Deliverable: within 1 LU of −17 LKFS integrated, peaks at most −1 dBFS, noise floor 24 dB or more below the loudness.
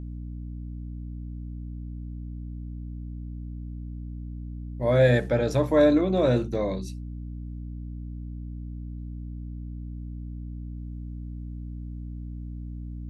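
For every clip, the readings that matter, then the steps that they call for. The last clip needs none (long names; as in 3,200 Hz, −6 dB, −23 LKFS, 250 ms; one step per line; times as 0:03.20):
mains hum 60 Hz; hum harmonics up to 300 Hz; level of the hum −33 dBFS; integrated loudness −29.5 LKFS; sample peak −9.0 dBFS; target loudness −17.0 LKFS
→ mains-hum notches 60/120/180/240/300 Hz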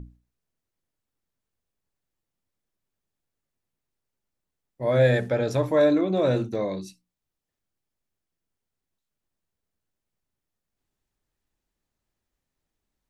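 mains hum none found; integrated loudness −23.0 LKFS; sample peak −9.0 dBFS; target loudness −17.0 LKFS
→ level +6 dB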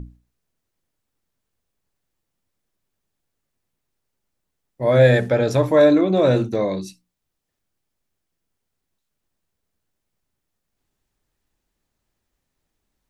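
integrated loudness −17.0 LKFS; sample peak −3.0 dBFS; background noise floor −79 dBFS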